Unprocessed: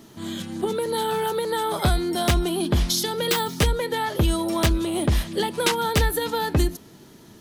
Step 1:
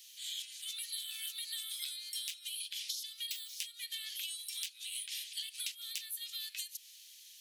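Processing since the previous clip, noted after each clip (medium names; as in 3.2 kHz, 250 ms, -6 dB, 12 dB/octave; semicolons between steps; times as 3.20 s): steep high-pass 2.5 kHz 36 dB/octave; compression 16:1, threshold -39 dBFS, peak gain reduction 19.5 dB; trim +1.5 dB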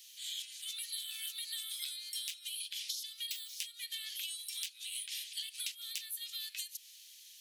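no audible change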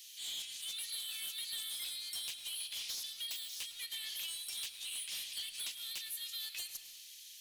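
saturation -38.5 dBFS, distortion -11 dB; reverberation RT60 1.4 s, pre-delay 105 ms, DRR 9 dB; trim +2.5 dB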